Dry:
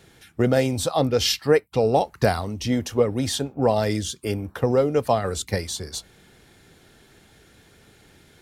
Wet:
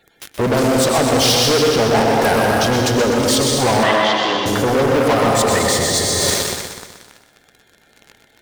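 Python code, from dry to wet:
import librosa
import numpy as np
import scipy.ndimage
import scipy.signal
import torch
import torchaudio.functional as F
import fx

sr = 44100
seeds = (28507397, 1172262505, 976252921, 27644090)

p1 = fx.spec_quant(x, sr, step_db=30)
p2 = fx.rev_plate(p1, sr, seeds[0], rt60_s=2.2, hf_ratio=0.85, predelay_ms=90, drr_db=2.0)
p3 = fx.leveller(p2, sr, passes=5)
p4 = fx.low_shelf(p3, sr, hz=340.0, db=-6.5)
p5 = fx.over_compress(p4, sr, threshold_db=-23.0, ratio=-0.5)
p6 = p4 + (p5 * 10.0 ** (-3.0 / 20.0))
p7 = fx.cabinet(p6, sr, low_hz=180.0, low_slope=24, high_hz=4600.0, hz=(230.0, 440.0, 1100.0, 1800.0, 3100.0), db=(-10, -5, 8, 6, 9), at=(3.83, 4.46))
p8 = p7 + fx.echo_feedback(p7, sr, ms=125, feedback_pct=51, wet_db=-8, dry=0)
y = p8 * 10.0 ** (-5.0 / 20.0)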